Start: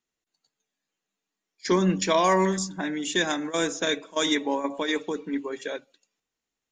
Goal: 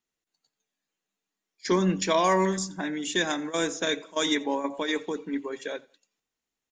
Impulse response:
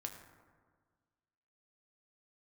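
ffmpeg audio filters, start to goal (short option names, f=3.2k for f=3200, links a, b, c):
-af "aecho=1:1:87|174:0.0631|0.0189,volume=-1.5dB"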